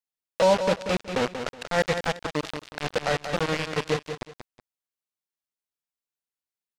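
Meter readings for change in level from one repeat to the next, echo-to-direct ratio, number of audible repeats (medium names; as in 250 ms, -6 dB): -12.0 dB, -8.0 dB, 2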